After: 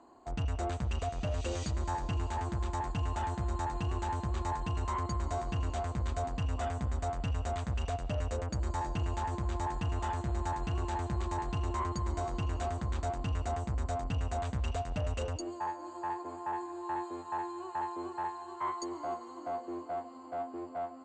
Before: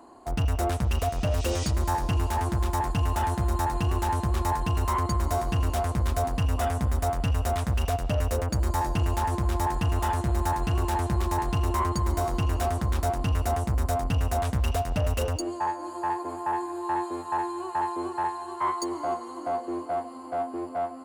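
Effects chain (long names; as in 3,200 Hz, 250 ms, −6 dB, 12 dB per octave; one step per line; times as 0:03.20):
Butterworth low-pass 8,300 Hz 96 dB per octave
notch filter 5,300 Hz, Q 7.6
level −8 dB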